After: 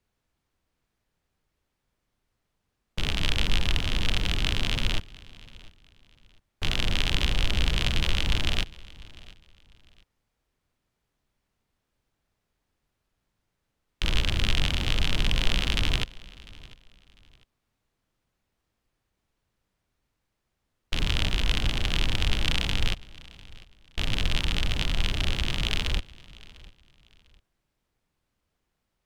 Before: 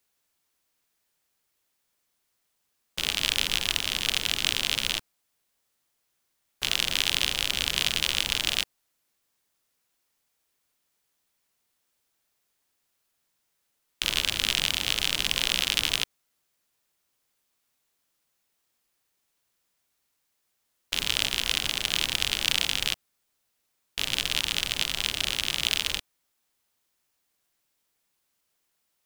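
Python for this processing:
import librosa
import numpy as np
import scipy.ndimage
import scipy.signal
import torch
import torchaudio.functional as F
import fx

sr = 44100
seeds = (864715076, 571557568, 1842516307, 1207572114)

y = fx.riaa(x, sr, side='playback')
y = fx.echo_feedback(y, sr, ms=699, feedback_pct=28, wet_db=-21.5)
y = y * librosa.db_to_amplitude(1.0)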